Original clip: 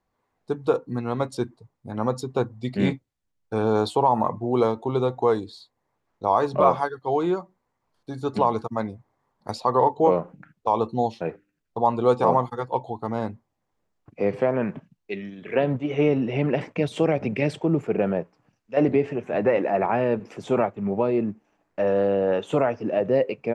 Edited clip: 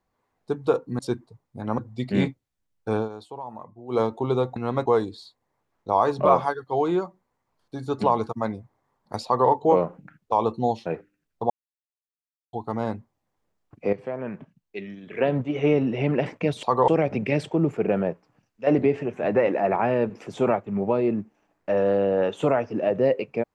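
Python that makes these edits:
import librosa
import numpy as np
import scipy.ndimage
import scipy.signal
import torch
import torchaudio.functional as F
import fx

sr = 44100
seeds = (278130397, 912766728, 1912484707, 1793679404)

y = fx.edit(x, sr, fx.move(start_s=0.99, length_s=0.3, to_s=5.21),
    fx.cut(start_s=2.08, length_s=0.35),
    fx.fade_down_up(start_s=3.61, length_s=1.05, db=-17.0, fade_s=0.13),
    fx.duplicate(start_s=9.6, length_s=0.25, to_s=16.98),
    fx.silence(start_s=11.85, length_s=1.03),
    fx.fade_in_from(start_s=14.28, length_s=1.47, floor_db=-12.0), tone=tone)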